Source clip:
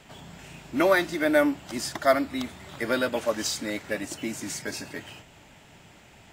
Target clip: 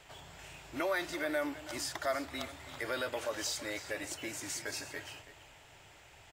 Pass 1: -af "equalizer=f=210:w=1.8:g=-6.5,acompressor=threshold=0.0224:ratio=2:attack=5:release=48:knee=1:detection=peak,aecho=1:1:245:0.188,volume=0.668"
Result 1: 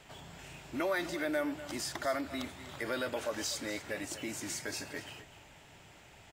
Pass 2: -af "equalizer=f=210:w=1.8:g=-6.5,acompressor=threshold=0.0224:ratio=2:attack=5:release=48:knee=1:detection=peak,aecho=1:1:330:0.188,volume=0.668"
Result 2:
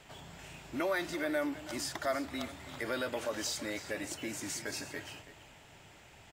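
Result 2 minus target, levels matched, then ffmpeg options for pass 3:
250 Hz band +3.0 dB
-af "equalizer=f=210:w=1.8:g=-18,acompressor=threshold=0.0224:ratio=2:attack=5:release=48:knee=1:detection=peak,aecho=1:1:330:0.188,volume=0.668"

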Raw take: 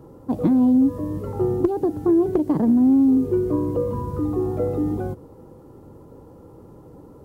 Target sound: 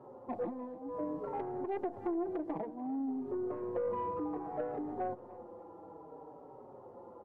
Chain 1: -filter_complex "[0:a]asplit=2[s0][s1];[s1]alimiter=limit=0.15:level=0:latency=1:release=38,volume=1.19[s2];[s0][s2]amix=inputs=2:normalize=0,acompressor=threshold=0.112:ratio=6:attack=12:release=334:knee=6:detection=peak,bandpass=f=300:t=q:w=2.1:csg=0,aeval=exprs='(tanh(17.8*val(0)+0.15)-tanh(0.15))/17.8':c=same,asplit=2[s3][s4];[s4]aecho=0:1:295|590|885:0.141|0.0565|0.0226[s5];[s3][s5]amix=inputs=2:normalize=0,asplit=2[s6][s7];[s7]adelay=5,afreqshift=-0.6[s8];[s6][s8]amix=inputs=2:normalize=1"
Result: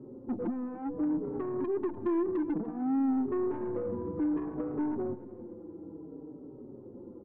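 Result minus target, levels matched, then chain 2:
1 kHz band -8.5 dB
-filter_complex "[0:a]asplit=2[s0][s1];[s1]alimiter=limit=0.15:level=0:latency=1:release=38,volume=1.19[s2];[s0][s2]amix=inputs=2:normalize=0,acompressor=threshold=0.112:ratio=6:attack=12:release=334:knee=6:detection=peak,bandpass=f=770:t=q:w=2.1:csg=0,aeval=exprs='(tanh(17.8*val(0)+0.15)-tanh(0.15))/17.8':c=same,asplit=2[s3][s4];[s4]aecho=0:1:295|590|885:0.141|0.0565|0.0226[s5];[s3][s5]amix=inputs=2:normalize=0,asplit=2[s6][s7];[s7]adelay=5,afreqshift=-0.6[s8];[s6][s8]amix=inputs=2:normalize=1"

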